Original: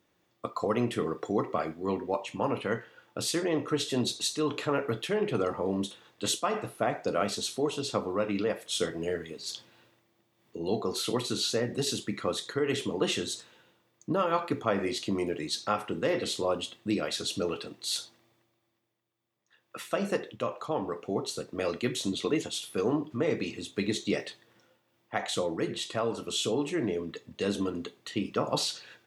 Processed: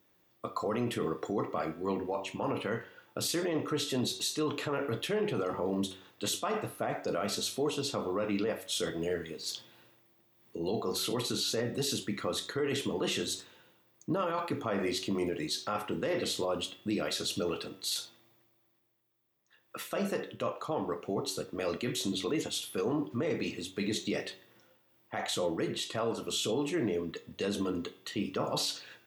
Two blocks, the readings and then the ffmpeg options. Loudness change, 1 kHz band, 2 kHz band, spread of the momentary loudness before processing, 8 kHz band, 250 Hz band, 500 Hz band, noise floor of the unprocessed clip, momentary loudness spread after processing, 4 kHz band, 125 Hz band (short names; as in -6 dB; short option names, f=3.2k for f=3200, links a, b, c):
-2.5 dB, -3.5 dB, -2.5 dB, 7 LU, -1.5 dB, -2.5 dB, -3.0 dB, -73 dBFS, 5 LU, -1.5 dB, -2.0 dB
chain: -af "aexciter=amount=2.9:drive=5.2:freq=12k,bandreject=f=94.41:t=h:w=4,bandreject=f=188.82:t=h:w=4,bandreject=f=283.23:t=h:w=4,bandreject=f=377.64:t=h:w=4,bandreject=f=472.05:t=h:w=4,bandreject=f=566.46:t=h:w=4,bandreject=f=660.87:t=h:w=4,bandreject=f=755.28:t=h:w=4,bandreject=f=849.69:t=h:w=4,bandreject=f=944.1:t=h:w=4,bandreject=f=1.03851k:t=h:w=4,bandreject=f=1.13292k:t=h:w=4,bandreject=f=1.22733k:t=h:w=4,bandreject=f=1.32174k:t=h:w=4,bandreject=f=1.41615k:t=h:w=4,bandreject=f=1.51056k:t=h:w=4,bandreject=f=1.60497k:t=h:w=4,bandreject=f=1.69938k:t=h:w=4,bandreject=f=1.79379k:t=h:w=4,bandreject=f=1.8882k:t=h:w=4,bandreject=f=1.98261k:t=h:w=4,bandreject=f=2.07702k:t=h:w=4,bandreject=f=2.17143k:t=h:w=4,bandreject=f=2.26584k:t=h:w=4,bandreject=f=2.36025k:t=h:w=4,bandreject=f=2.45466k:t=h:w=4,bandreject=f=2.54907k:t=h:w=4,bandreject=f=2.64348k:t=h:w=4,bandreject=f=2.73789k:t=h:w=4,bandreject=f=2.8323k:t=h:w=4,bandreject=f=2.92671k:t=h:w=4,bandreject=f=3.02112k:t=h:w=4,bandreject=f=3.11553k:t=h:w=4,bandreject=f=3.20994k:t=h:w=4,bandreject=f=3.30435k:t=h:w=4,bandreject=f=3.39876k:t=h:w=4,bandreject=f=3.49317k:t=h:w=4,bandreject=f=3.58758k:t=h:w=4,bandreject=f=3.68199k:t=h:w=4,alimiter=limit=-23dB:level=0:latency=1:release=21"